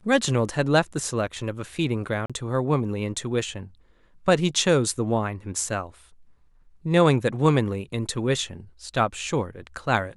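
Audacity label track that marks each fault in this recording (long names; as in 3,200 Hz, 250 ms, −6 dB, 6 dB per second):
2.260000	2.300000	drop-out 36 ms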